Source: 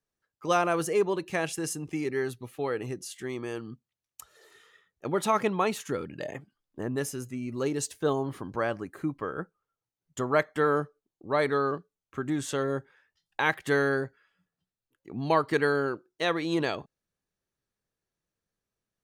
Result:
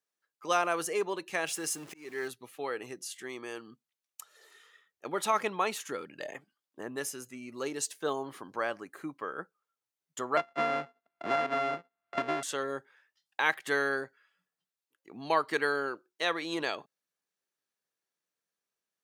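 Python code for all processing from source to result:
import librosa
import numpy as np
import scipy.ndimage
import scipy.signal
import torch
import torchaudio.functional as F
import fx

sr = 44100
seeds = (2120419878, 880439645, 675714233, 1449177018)

y = fx.chain(x, sr, fx.zero_step(step_db=-41.5),
    fx.auto_swell(attack_ms=320.0), at=(1.47, 2.28))
y = fx.chain(y, sr, fx.sample_sort(block=64),
    fx.lowpass(hz=1900.0, slope=12),
    fx.band_squash(depth_pct=100), at=(10.37, 12.43))
y = scipy.signal.sosfilt(scipy.signal.butter(2, 190.0, 'highpass', fs=sr, output='sos'), y)
y = fx.low_shelf(y, sr, hz=470.0, db=-11.0)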